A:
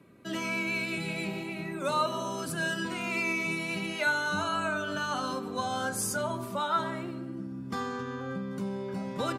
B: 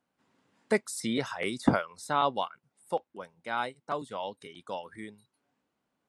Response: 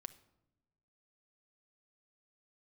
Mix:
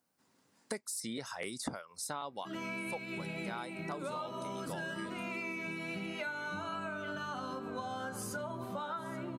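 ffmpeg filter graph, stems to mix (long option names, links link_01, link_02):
-filter_complex "[0:a]equalizer=frequency=8700:width_type=o:width=2.4:gain=-8,adelay=2200,volume=-2dB,asplit=2[link_01][link_02];[link_02]volume=-14.5dB[link_03];[1:a]aexciter=amount=1.5:drive=9.4:freq=4400,volume=-2dB[link_04];[link_03]aecho=0:1:830:1[link_05];[link_01][link_04][link_05]amix=inputs=3:normalize=0,acompressor=threshold=-36dB:ratio=10"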